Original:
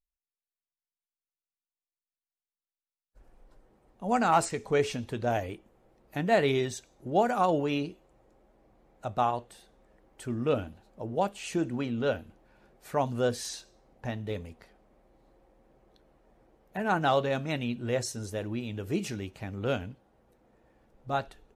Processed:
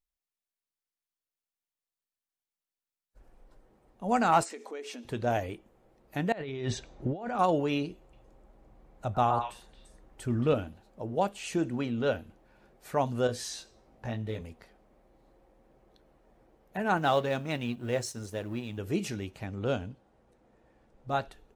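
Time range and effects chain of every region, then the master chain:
0:04.43–0:05.05: downward compressor 10 to 1, threshold −36 dBFS + linear-phase brick-wall high-pass 220 Hz
0:06.32–0:07.39: low-pass filter 4,000 Hz + low-shelf EQ 91 Hz +9 dB + compressor whose output falls as the input rises −35 dBFS
0:07.90–0:10.53: low-shelf EQ 140 Hz +10 dB + echo through a band-pass that steps 114 ms, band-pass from 1,100 Hz, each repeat 1.4 octaves, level −1.5 dB
0:13.27–0:14.41: high-shelf EQ 11,000 Hz −4.5 dB + downward compressor 1.5 to 1, threshold −40 dBFS + double-tracking delay 18 ms −2 dB
0:16.97–0:18.78: mu-law and A-law mismatch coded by A + high-pass filter 41 Hz
0:19.46–0:21.09: low-pass filter 10,000 Hz 24 dB per octave + dynamic equaliser 2,100 Hz, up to −6 dB, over −54 dBFS, Q 1.5
whole clip: no processing

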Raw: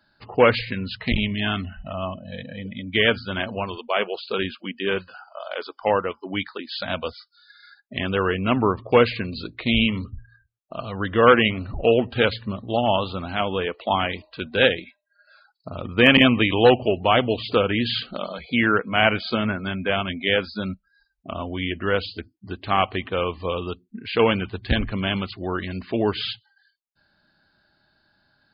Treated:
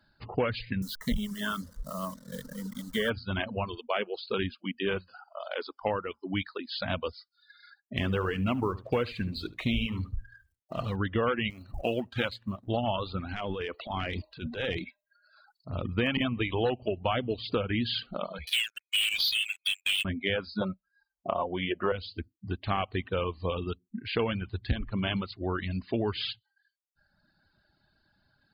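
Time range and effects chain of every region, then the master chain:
0:00.82–0:03.10: hold until the input has moved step −38 dBFS + high-shelf EQ 2,300 Hz +7.5 dB + phaser with its sweep stopped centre 500 Hz, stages 8
0:07.97–0:10.96: mu-law and A-law mismatch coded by mu + single-tap delay 73 ms −11 dB
0:11.50–0:12.68: mu-law and A-law mismatch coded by A + low-shelf EQ 140 Hz −9.5 dB + notch filter 440 Hz, Q 5.6
0:13.31–0:15.73: downward compressor 2.5 to 1, threshold −26 dBFS + transient designer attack −9 dB, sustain +8 dB
0:18.47–0:20.05: Chebyshev high-pass filter 2,600 Hz, order 5 + leveller curve on the samples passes 5
0:20.61–0:21.92: high-pass filter 180 Hz 6 dB per octave + flat-topped bell 710 Hz +12.5 dB + comb filter 5.6 ms, depth 35%
whole clip: reverb reduction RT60 1.2 s; low-shelf EQ 160 Hz +9.5 dB; downward compressor 6 to 1, threshold −21 dBFS; level −4 dB

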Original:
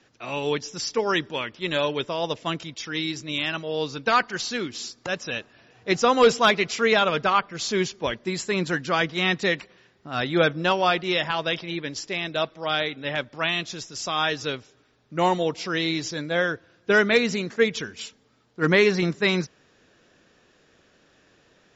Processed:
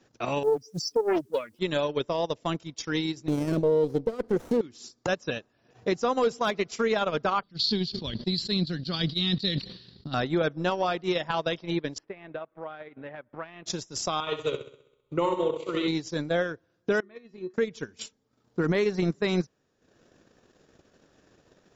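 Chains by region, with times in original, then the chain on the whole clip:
0:00.43–0:01.59: expanding power law on the bin magnitudes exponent 3.1 + bit-depth reduction 10 bits, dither triangular + highs frequency-modulated by the lows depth 0.44 ms
0:03.28–0:04.61: downward compressor 10 to 1, threshold −24 dBFS + low shelf with overshoot 670 Hz +10.5 dB, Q 3 + windowed peak hold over 9 samples
0:07.43–0:10.14: drawn EQ curve 190 Hz 0 dB, 340 Hz −8 dB, 680 Hz −17 dB, 2,400 Hz −8 dB, 4,400 Hz +15 dB, 6,300 Hz −16 dB + level that may fall only so fast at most 53 dB per second
0:11.98–0:13.66: low-pass filter 2,300 Hz 24 dB per octave + low-shelf EQ 360 Hz −8 dB + downward compressor 2.5 to 1, threshold −40 dBFS
0:14.20–0:15.88: phaser with its sweep stopped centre 1,100 Hz, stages 8 + flutter between parallel walls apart 11.1 metres, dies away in 0.83 s
0:17.00–0:17.54: low-pass filter 2,900 Hz + tuned comb filter 370 Hz, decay 0.29 s, harmonics odd, mix 90%
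whole clip: parametric band 2,500 Hz −8.5 dB 2 octaves; transient designer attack +11 dB, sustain −11 dB; brickwall limiter −16.5 dBFS

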